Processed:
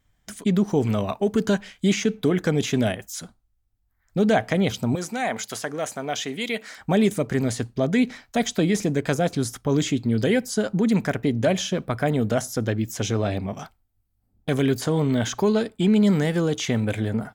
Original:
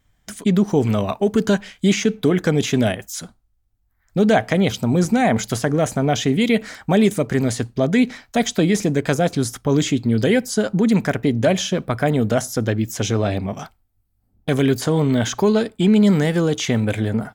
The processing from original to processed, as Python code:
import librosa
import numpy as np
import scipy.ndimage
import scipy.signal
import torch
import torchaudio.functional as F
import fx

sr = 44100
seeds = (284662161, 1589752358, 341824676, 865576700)

y = fx.highpass(x, sr, hz=770.0, slope=6, at=(4.95, 6.78))
y = F.gain(torch.from_numpy(y), -4.0).numpy()